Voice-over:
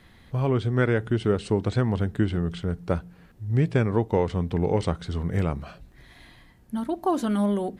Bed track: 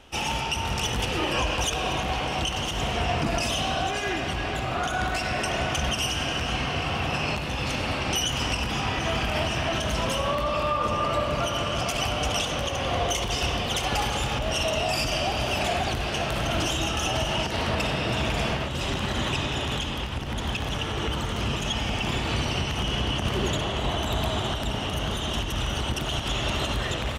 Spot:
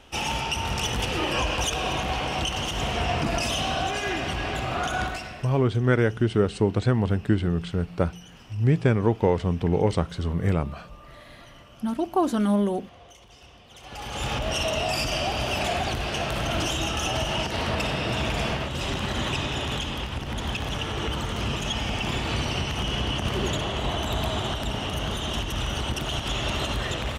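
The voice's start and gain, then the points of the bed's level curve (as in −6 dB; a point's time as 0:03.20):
5.10 s, +1.5 dB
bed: 0:05.01 0 dB
0:05.66 −24 dB
0:13.68 −24 dB
0:14.27 −0.5 dB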